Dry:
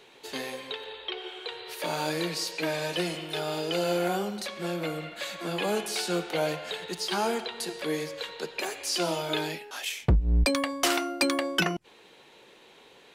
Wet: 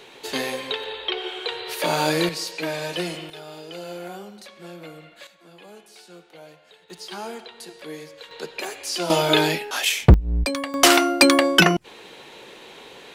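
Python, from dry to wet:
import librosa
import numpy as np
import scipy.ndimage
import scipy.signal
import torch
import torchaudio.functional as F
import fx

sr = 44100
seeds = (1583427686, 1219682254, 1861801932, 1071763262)

y = fx.gain(x, sr, db=fx.steps((0.0, 8.5), (2.29, 2.0), (3.3, -8.0), (5.27, -17.0), (6.9, -6.0), (8.31, 1.5), (9.1, 11.5), (10.14, 0.0), (10.74, 11.0)))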